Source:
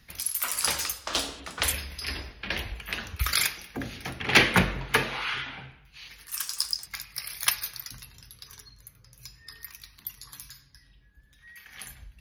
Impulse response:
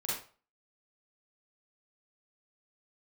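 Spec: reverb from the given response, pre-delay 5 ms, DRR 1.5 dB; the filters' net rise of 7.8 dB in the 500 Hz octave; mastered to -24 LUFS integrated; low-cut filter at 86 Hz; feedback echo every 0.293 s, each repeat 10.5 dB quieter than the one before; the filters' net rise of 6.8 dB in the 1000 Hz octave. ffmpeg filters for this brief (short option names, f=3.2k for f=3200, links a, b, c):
-filter_complex "[0:a]highpass=86,equalizer=f=500:t=o:g=8,equalizer=f=1k:t=o:g=6.5,aecho=1:1:293|586|879:0.299|0.0896|0.0269,asplit=2[a][b];[1:a]atrim=start_sample=2205,adelay=5[c];[b][c]afir=irnorm=-1:irlink=0,volume=-5dB[d];[a][d]amix=inputs=2:normalize=0,volume=-0.5dB"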